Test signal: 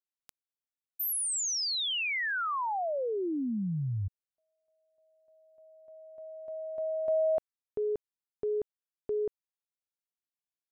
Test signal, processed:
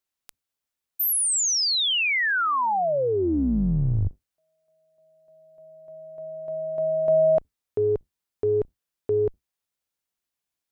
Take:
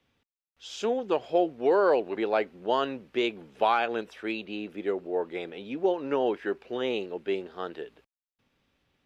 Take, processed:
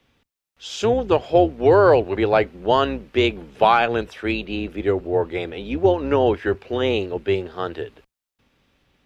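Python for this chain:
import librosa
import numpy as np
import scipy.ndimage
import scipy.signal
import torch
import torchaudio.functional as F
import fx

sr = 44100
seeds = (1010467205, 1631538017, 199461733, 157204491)

y = fx.octave_divider(x, sr, octaves=2, level_db=-5.0)
y = F.gain(torch.from_numpy(y), 8.5).numpy()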